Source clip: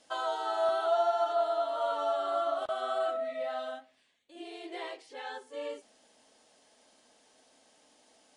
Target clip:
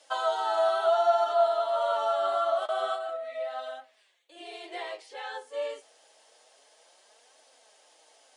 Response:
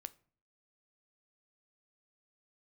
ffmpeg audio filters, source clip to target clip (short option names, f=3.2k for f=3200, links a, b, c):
-filter_complex "[0:a]highpass=f=430:w=0.5412,highpass=f=430:w=1.3066,asplit=3[a][b][c];[a]afade=t=out:st=2.95:d=0.02[d];[b]acompressor=threshold=-38dB:ratio=3,afade=t=in:st=2.95:d=0.02,afade=t=out:st=5.44:d=0.02[e];[c]afade=t=in:st=5.44:d=0.02[f];[d][e][f]amix=inputs=3:normalize=0,flanger=delay=3.3:depth=9:regen=56:speed=0.27:shape=triangular,volume=8.5dB"